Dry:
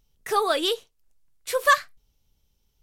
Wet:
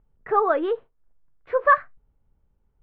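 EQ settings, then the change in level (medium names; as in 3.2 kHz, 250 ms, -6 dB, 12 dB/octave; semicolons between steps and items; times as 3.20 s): low-pass 1.6 kHz 24 dB/octave; +3.0 dB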